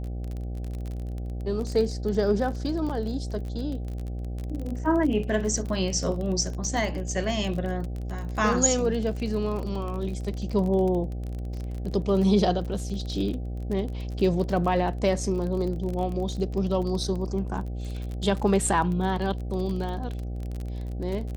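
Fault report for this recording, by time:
buzz 60 Hz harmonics 13 -32 dBFS
crackle 33 per s -31 dBFS
2.89–2.90 s: dropout 6.5 ms

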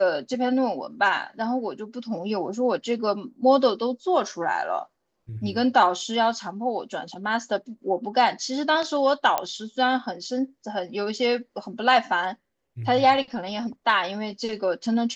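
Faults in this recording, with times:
9.38 s: pop -10 dBFS

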